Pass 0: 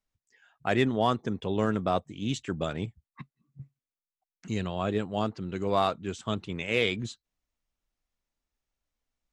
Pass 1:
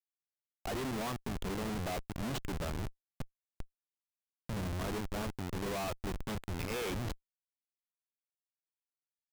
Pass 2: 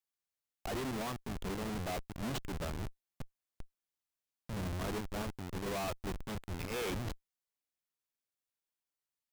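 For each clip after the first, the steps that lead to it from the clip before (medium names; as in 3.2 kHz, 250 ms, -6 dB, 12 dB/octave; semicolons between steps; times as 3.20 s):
Schmitt trigger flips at -34.5 dBFS; trim -4 dB
peak limiter -36.5 dBFS, peak gain reduction 6.5 dB; trim +1.5 dB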